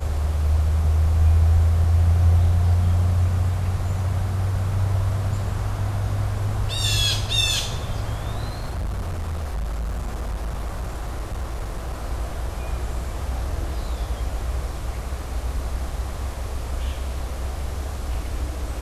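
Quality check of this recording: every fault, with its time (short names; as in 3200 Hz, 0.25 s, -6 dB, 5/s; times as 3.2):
8.48–11.94 clipped -23.5 dBFS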